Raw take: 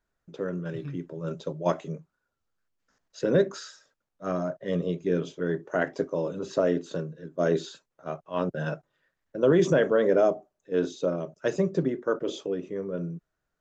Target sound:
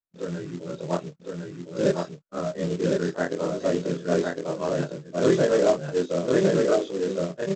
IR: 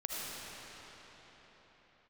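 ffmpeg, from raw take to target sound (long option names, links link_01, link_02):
-af "afftfilt=real='re':imag='-im':win_size=4096:overlap=0.75,lowpass=frequency=2500:poles=1,agate=range=-21dB:threshold=-54dB:ratio=16:detection=peak,lowshelf=frequency=85:gain=-5.5,atempo=1.8,aresample=16000,acrusher=bits=4:mode=log:mix=0:aa=0.000001,aresample=44100,aecho=1:1:1058:0.708,volume=6.5dB"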